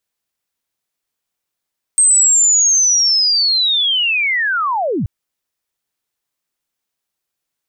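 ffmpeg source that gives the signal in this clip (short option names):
-f lavfi -i "aevalsrc='pow(10,(-7.5-8*t/3.08)/20)*sin(2*PI*(8400*t-8325*t*t/(2*3.08)))':d=3.08:s=44100"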